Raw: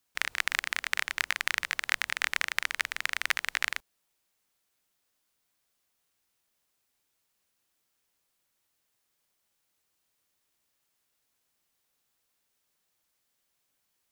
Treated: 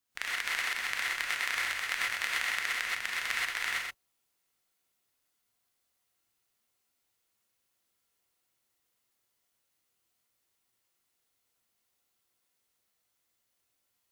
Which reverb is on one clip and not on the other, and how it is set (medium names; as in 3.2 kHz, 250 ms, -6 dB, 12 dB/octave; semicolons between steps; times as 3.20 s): gated-style reverb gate 150 ms rising, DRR -5 dB; trim -7.5 dB